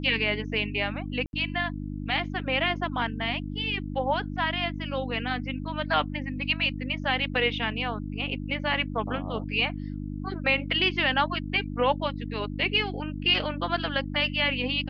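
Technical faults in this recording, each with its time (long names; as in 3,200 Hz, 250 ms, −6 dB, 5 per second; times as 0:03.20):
mains hum 50 Hz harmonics 6 −34 dBFS
0:01.26–0:01.33: drop-out 71 ms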